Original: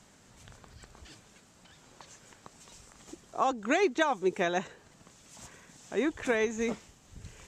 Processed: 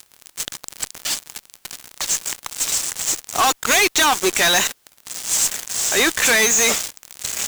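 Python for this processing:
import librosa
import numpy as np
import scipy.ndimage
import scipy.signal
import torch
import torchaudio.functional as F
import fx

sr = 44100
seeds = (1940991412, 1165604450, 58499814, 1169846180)

y = np.diff(x, prepend=0.0)
y = fx.fuzz(y, sr, gain_db=64.0, gate_db=-56.0)
y = fx.quant_dither(y, sr, seeds[0], bits=10, dither='triangular')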